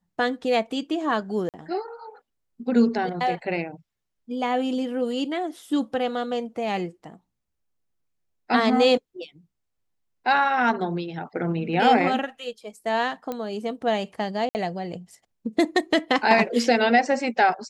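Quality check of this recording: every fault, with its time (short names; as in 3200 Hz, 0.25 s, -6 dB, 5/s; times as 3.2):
1.49–1.54 gap 48 ms
13.32 pop -17 dBFS
14.49–14.55 gap 59 ms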